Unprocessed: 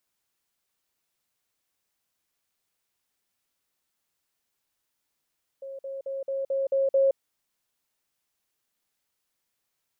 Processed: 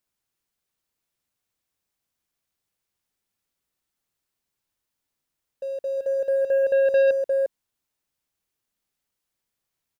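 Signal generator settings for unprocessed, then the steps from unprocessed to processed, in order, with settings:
level ladder 543 Hz -35.5 dBFS, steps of 3 dB, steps 7, 0.17 s 0.05 s
echo 0.352 s -8.5 dB; sample leveller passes 2; low shelf 270 Hz +7 dB

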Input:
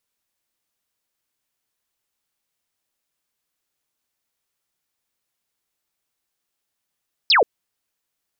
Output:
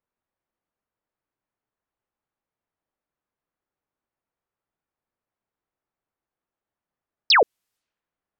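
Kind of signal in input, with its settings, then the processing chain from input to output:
laser zap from 5400 Hz, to 390 Hz, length 0.13 s sine, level -11.5 dB
low-pass opened by the level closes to 1300 Hz, open at -31.5 dBFS

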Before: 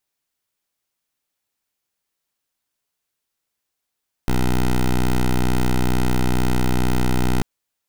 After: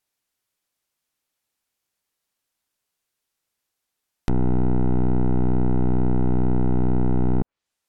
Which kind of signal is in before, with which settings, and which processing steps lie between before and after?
pulse 62.2 Hz, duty 11% -17 dBFS 3.14 s
treble ducked by the level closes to 650 Hz, closed at -18 dBFS

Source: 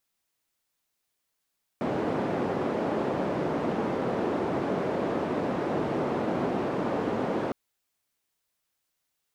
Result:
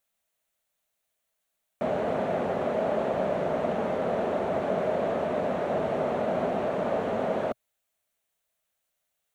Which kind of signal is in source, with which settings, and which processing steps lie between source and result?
noise band 190–500 Hz, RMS -28.5 dBFS 5.71 s
thirty-one-band EQ 125 Hz -8 dB, 315 Hz -11 dB, 630 Hz +9 dB, 1000 Hz -3 dB, 5000 Hz -8 dB

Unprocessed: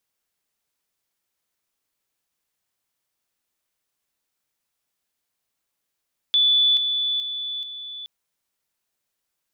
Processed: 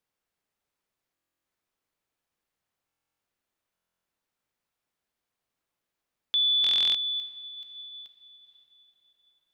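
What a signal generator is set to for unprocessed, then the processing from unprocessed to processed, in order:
level ladder 3470 Hz -14.5 dBFS, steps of -6 dB, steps 4, 0.43 s 0.00 s
high shelf 3300 Hz -11 dB; diffused feedback echo 0.504 s, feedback 42%, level -10.5 dB; stuck buffer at 1.13/2.87/3.73/6.62, samples 1024, times 13

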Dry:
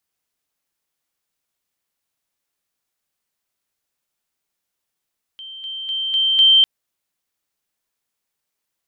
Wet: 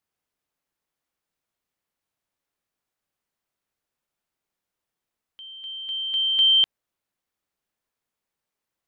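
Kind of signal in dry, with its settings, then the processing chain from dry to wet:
level ladder 3130 Hz -32.5 dBFS, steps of 6 dB, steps 5, 0.25 s 0.00 s
high shelf 2600 Hz -9 dB

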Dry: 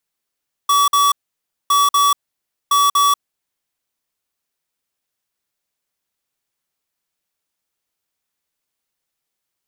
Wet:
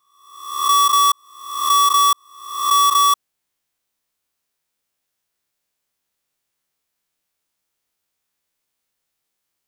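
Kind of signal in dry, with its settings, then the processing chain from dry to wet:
beep pattern square 1140 Hz, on 0.19 s, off 0.05 s, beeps 2, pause 0.58 s, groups 3, -13.5 dBFS
spectral swells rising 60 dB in 0.79 s

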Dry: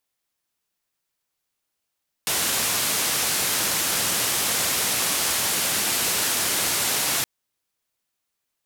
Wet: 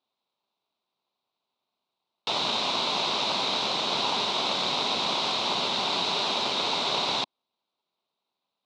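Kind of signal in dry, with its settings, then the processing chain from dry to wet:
noise band 87–13000 Hz, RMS -23.5 dBFS 4.97 s
bell 1600 Hz -8.5 dB 1.9 oct; in parallel at -5 dB: sample-rate reducer 1800 Hz, jitter 0%; on the sum: speaker cabinet 280–4200 Hz, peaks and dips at 310 Hz -7 dB, 490 Hz -6 dB, 990 Hz +5 dB, 1800 Hz -6 dB, 3800 Hz +10 dB

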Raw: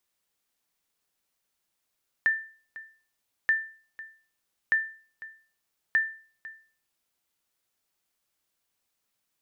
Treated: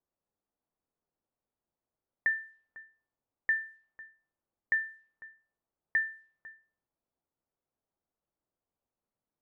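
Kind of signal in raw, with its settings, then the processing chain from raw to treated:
sonar ping 1780 Hz, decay 0.42 s, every 1.23 s, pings 4, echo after 0.50 s, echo -18.5 dB -16 dBFS
low-pass opened by the level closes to 850 Hz, open at -29 dBFS; high shelf 2300 Hz -9 dB; notches 60/120/180/240/300/360/420 Hz

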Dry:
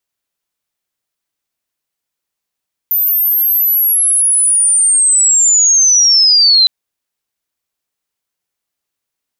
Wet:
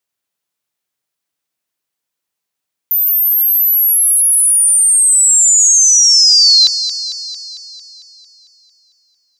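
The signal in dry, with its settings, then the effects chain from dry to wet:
chirp linear 14000 Hz -> 4000 Hz -10 dBFS -> -5 dBFS 3.76 s
HPF 80 Hz; on a send: thinning echo 0.225 s, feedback 63%, high-pass 210 Hz, level -11 dB

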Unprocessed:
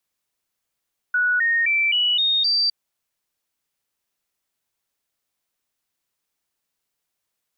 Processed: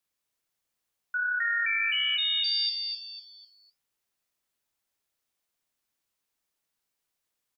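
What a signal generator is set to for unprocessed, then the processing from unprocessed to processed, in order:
stepped sine 1470 Hz up, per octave 3, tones 6, 0.26 s, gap 0.00 s -16.5 dBFS
limiter -21 dBFS; flange 1.4 Hz, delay 9.1 ms, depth 8 ms, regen -69%; frequency-shifting echo 0.25 s, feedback 35%, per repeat -54 Hz, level -5 dB

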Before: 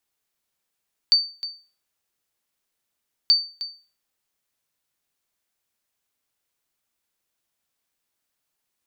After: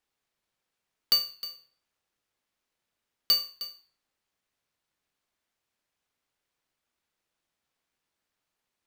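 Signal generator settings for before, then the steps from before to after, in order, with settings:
sonar ping 4580 Hz, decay 0.36 s, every 2.18 s, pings 2, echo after 0.31 s, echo -14.5 dB -9 dBFS
half-waves squared off; high shelf 6200 Hz -7.5 dB; flange 0.31 Hz, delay 6.9 ms, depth 4.1 ms, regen -88%

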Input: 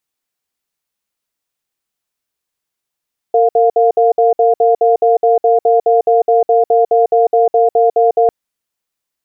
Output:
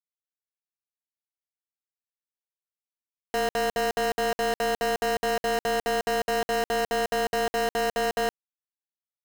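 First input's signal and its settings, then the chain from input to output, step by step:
cadence 458 Hz, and 702 Hz, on 0.15 s, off 0.06 s, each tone -10 dBFS 4.95 s
limiter -12.5 dBFS; companded quantiser 2-bit

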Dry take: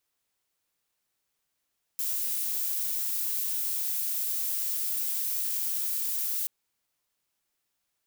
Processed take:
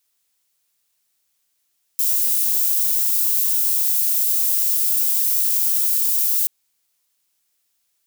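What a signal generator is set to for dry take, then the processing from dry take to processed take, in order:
noise violet, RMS -30 dBFS 4.48 s
high shelf 2600 Hz +11.5 dB

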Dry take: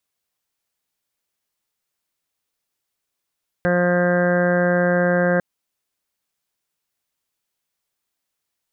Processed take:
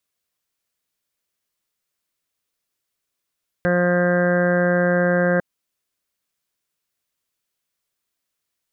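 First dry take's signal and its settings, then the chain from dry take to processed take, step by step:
steady additive tone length 1.75 s, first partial 177 Hz, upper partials -6/1.5/-7.5/-18.5/-16.5/-14/-13.5/-4/-13.5/-15.5 dB, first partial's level -20 dB
bell 830 Hz -6 dB 0.28 oct

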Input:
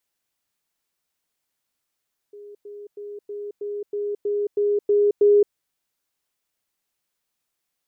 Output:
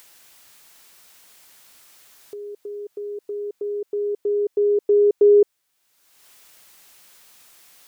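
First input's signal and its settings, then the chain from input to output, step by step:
level ladder 411 Hz -38.5 dBFS, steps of 3 dB, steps 10, 0.22 s 0.10 s
low shelf 490 Hz -7 dB; in parallel at +1.5 dB: upward compressor, threshold -31 dBFS

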